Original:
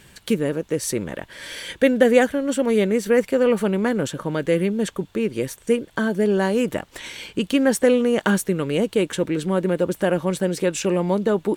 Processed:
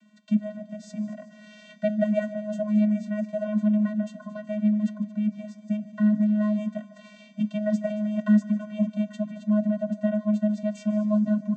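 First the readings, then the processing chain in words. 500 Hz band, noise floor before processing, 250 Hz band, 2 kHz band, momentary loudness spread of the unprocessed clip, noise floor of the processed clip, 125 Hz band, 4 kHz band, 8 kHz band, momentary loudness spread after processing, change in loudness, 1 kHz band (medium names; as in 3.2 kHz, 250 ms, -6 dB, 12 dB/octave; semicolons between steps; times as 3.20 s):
-12.0 dB, -52 dBFS, -1.0 dB, -15.5 dB, 10 LU, -51 dBFS, -3.5 dB, under -15 dB, under -20 dB, 12 LU, -4.5 dB, -15.5 dB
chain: flange 0.58 Hz, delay 5.6 ms, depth 3.8 ms, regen +85%; vocoder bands 16, square 211 Hz; multi-head delay 75 ms, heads second and third, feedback 64%, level -18 dB; trim +1.5 dB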